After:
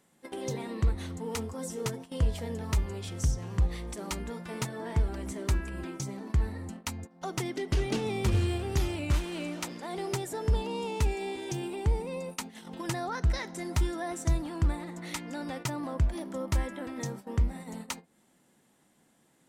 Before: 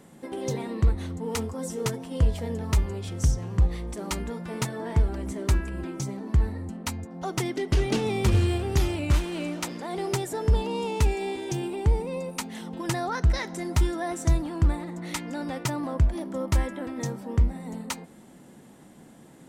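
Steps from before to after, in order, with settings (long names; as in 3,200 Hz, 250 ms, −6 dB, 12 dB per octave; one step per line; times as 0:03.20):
noise gate −36 dBFS, range −14 dB
one half of a high-frequency compander encoder only
level −5 dB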